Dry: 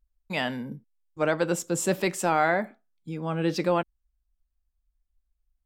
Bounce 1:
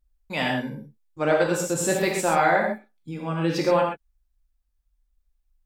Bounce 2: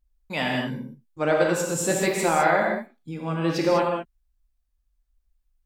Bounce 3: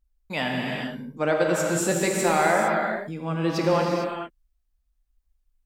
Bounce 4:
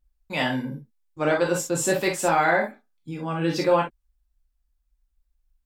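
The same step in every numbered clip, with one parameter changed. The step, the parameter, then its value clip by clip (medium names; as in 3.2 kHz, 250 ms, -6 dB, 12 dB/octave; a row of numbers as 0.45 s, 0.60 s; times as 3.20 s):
gated-style reverb, gate: 150 ms, 230 ms, 480 ms, 80 ms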